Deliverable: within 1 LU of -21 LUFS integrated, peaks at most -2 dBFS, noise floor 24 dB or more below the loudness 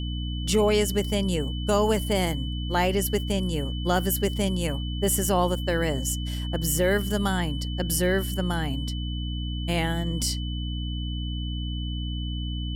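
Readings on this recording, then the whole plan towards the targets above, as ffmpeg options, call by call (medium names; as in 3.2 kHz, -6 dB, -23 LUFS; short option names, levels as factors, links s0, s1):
hum 60 Hz; highest harmonic 300 Hz; hum level -28 dBFS; steady tone 3 kHz; tone level -38 dBFS; loudness -26.5 LUFS; peak level -10.0 dBFS; loudness target -21.0 LUFS
-> -af "bandreject=f=60:t=h:w=6,bandreject=f=120:t=h:w=6,bandreject=f=180:t=h:w=6,bandreject=f=240:t=h:w=6,bandreject=f=300:t=h:w=6"
-af "bandreject=f=3000:w=30"
-af "volume=1.88"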